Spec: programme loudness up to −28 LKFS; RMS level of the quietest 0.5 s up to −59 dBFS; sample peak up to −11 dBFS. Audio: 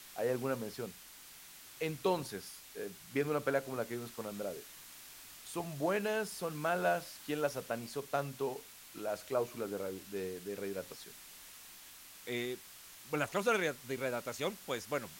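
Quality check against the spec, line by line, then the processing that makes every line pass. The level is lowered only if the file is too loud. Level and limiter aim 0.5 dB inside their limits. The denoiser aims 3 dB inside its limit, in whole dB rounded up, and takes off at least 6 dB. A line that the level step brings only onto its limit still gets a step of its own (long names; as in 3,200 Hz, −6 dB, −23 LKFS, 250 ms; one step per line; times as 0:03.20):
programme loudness −37.5 LKFS: in spec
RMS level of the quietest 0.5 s −54 dBFS: out of spec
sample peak −18.5 dBFS: in spec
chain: broadband denoise 8 dB, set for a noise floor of −54 dBFS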